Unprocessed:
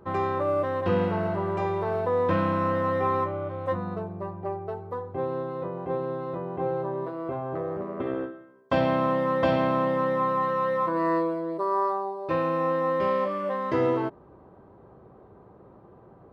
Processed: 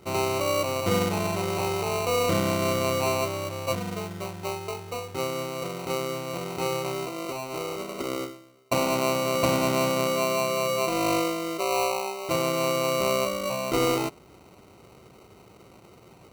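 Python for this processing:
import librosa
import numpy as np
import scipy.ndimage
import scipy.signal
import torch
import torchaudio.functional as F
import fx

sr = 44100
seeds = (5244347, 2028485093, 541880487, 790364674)

y = fx.highpass(x, sr, hz=230.0, slope=6, at=(7.25, 9.35))
y = fx.sample_hold(y, sr, seeds[0], rate_hz=1700.0, jitter_pct=0)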